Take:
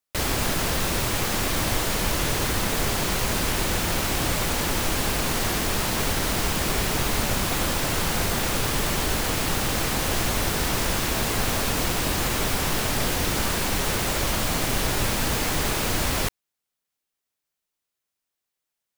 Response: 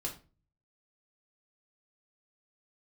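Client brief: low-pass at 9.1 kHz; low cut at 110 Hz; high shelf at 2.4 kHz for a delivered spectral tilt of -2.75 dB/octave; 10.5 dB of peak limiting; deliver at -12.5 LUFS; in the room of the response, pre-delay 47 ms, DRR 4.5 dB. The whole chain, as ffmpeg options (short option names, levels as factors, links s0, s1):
-filter_complex "[0:a]highpass=110,lowpass=9100,highshelf=f=2400:g=8.5,alimiter=limit=0.106:level=0:latency=1,asplit=2[s0][s1];[1:a]atrim=start_sample=2205,adelay=47[s2];[s1][s2]afir=irnorm=-1:irlink=0,volume=0.562[s3];[s0][s3]amix=inputs=2:normalize=0,volume=4.47"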